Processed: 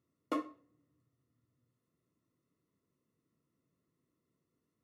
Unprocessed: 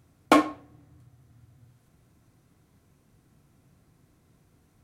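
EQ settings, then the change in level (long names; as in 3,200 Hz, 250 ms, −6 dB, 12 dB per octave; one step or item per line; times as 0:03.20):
moving average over 56 samples
spectral tilt +4.5 dB per octave
low-shelf EQ 150 Hz −11 dB
−3.5 dB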